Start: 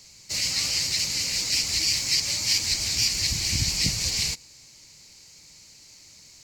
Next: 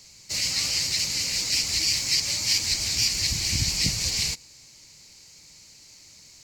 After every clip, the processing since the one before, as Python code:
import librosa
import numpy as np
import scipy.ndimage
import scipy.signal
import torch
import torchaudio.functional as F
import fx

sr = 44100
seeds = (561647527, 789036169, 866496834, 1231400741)

y = x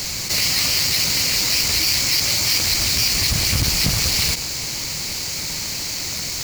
y = fx.halfwave_hold(x, sr)
y = fx.env_flatten(y, sr, amount_pct=70)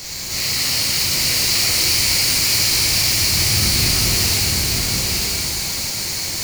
y = x + 10.0 ** (-3.0 / 20.0) * np.pad(x, (int(901 * sr / 1000.0), 0))[:len(x)]
y = fx.rev_shimmer(y, sr, seeds[0], rt60_s=2.9, semitones=12, shimmer_db=-8, drr_db=-6.5)
y = y * 10.0 ** (-7.5 / 20.0)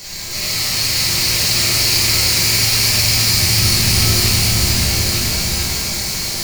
y = x + 10.0 ** (-3.5 / 20.0) * np.pad(x, (int(446 * sr / 1000.0), 0))[:len(x)]
y = fx.room_shoebox(y, sr, seeds[1], volume_m3=220.0, walls='mixed', distance_m=1.2)
y = y * 10.0 ** (-2.5 / 20.0)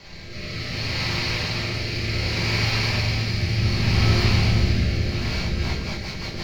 y = fx.rotary_switch(x, sr, hz=0.65, then_hz=6.0, switch_at_s=5.07)
y = fx.air_absorb(y, sr, metres=290.0)